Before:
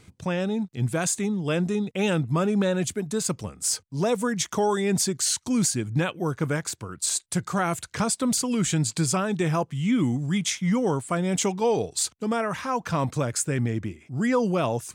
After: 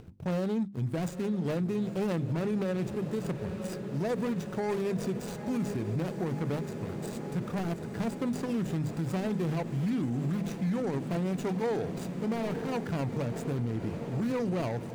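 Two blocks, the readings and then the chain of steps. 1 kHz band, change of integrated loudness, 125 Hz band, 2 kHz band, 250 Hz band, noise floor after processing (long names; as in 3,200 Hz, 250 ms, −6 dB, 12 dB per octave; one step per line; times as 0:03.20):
−10.0 dB, −7.0 dB, −4.5 dB, −10.5 dB, −5.0 dB, −40 dBFS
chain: running median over 41 samples
upward compression, threshold −43 dBFS
mains-hum notches 50/100/150/200/250/300/350 Hz
on a send: feedback delay with all-pass diffusion 921 ms, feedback 76%, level −13 dB
on the sum: brickwall limiter −24 dBFS, peak gain reduction 9.5 dB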